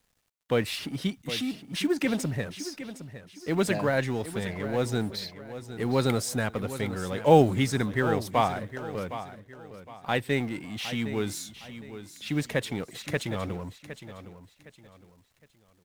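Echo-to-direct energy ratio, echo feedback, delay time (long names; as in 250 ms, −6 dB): −12.0 dB, 32%, 762 ms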